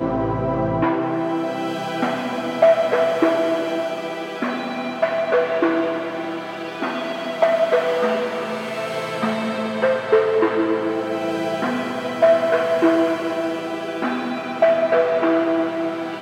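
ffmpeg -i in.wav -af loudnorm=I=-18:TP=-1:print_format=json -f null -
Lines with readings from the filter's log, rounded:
"input_i" : "-20.8",
"input_tp" : "-2.5",
"input_lra" : "2.1",
"input_thresh" : "-30.8",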